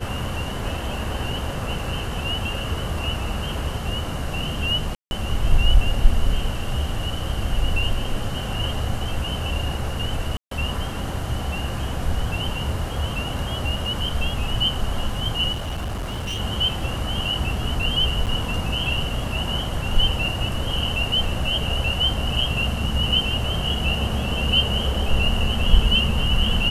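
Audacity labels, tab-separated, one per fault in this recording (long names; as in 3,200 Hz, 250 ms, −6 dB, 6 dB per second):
4.950000	5.110000	drop-out 161 ms
10.370000	10.510000	drop-out 143 ms
15.520000	16.400000	clipping −24 dBFS
18.260000	18.270000	drop-out 8.1 ms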